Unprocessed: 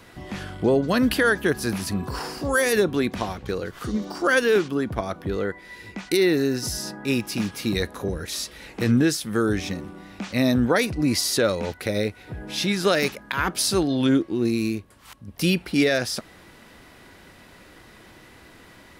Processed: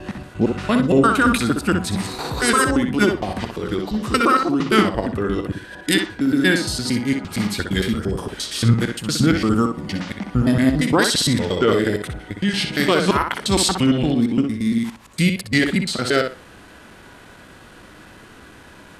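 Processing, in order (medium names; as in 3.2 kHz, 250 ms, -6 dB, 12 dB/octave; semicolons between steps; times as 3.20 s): slices played last to first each 115 ms, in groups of 3; formant shift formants -3 st; tape echo 62 ms, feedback 23%, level -4.5 dB, low-pass 4.3 kHz; trim +4 dB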